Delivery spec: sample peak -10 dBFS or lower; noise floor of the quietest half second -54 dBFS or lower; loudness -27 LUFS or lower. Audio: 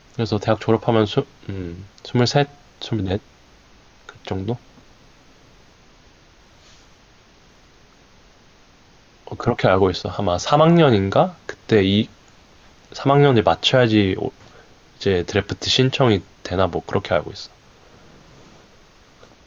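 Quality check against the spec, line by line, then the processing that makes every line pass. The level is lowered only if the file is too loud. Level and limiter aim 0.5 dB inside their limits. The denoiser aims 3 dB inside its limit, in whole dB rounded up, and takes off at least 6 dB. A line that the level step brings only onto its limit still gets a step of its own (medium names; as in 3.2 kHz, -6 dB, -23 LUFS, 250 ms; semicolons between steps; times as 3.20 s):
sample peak -2.5 dBFS: fail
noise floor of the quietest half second -51 dBFS: fail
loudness -19.5 LUFS: fail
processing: trim -8 dB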